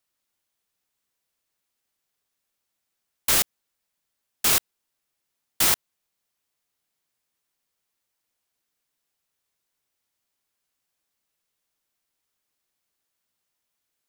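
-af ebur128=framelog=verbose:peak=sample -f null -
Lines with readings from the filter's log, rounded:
Integrated loudness:
  I:         -21.6 LUFS
  Threshold: -31.6 LUFS
Loudness range:
  LRA:         4.9 LU
  Threshold: -47.0 LUFS
  LRA low:   -29.2 LUFS
  LRA high:  -24.3 LUFS
Sample peak:
  Peak:       -6.6 dBFS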